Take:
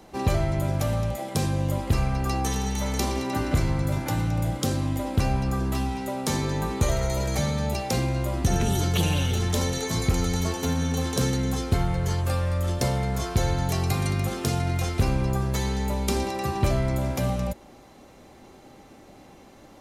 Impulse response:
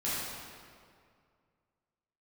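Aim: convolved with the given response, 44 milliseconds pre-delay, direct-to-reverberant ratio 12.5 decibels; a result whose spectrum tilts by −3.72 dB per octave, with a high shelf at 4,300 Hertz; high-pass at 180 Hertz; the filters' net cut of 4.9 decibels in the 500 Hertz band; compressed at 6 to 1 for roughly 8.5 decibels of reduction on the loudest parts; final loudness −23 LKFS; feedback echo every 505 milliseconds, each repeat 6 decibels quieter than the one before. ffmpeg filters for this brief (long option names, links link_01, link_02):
-filter_complex "[0:a]highpass=180,equalizer=frequency=500:width_type=o:gain=-6.5,highshelf=frequency=4300:gain=8.5,acompressor=threshold=-33dB:ratio=6,aecho=1:1:505|1010|1515|2020|2525|3030:0.501|0.251|0.125|0.0626|0.0313|0.0157,asplit=2[link_01][link_02];[1:a]atrim=start_sample=2205,adelay=44[link_03];[link_02][link_03]afir=irnorm=-1:irlink=0,volume=-20dB[link_04];[link_01][link_04]amix=inputs=2:normalize=0,volume=11.5dB"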